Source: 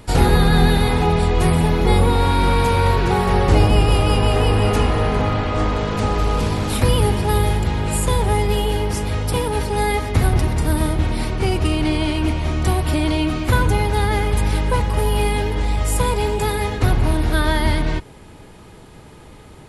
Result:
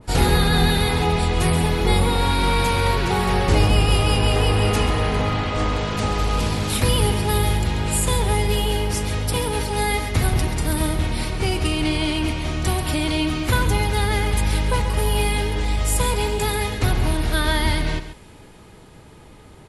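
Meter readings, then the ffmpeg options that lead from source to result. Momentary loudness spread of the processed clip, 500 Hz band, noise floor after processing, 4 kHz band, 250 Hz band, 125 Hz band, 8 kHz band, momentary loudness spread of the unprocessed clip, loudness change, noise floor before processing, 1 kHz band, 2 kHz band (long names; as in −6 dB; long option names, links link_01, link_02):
5 LU, −3.5 dB, −45 dBFS, +2.5 dB, −3.0 dB, −3.0 dB, +2.5 dB, 5 LU, −2.0 dB, −42 dBFS, −2.5 dB, 0.0 dB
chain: -filter_complex "[0:a]asplit=2[link_01][link_02];[link_02]aecho=0:1:136:0.266[link_03];[link_01][link_03]amix=inputs=2:normalize=0,adynamicequalizer=threshold=0.0178:dfrequency=1800:dqfactor=0.7:tfrequency=1800:tqfactor=0.7:attack=5:release=100:ratio=0.375:range=3:mode=boostabove:tftype=highshelf,volume=-3.5dB"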